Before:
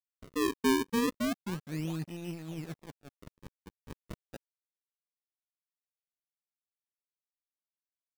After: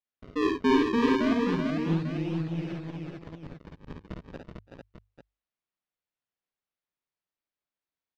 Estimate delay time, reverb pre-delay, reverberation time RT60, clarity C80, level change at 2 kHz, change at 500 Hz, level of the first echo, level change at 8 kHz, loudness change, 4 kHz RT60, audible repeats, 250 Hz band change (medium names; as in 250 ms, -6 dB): 55 ms, no reverb, no reverb, no reverb, +5.0 dB, +6.5 dB, -4.0 dB, no reading, +6.0 dB, no reverb, 5, +7.0 dB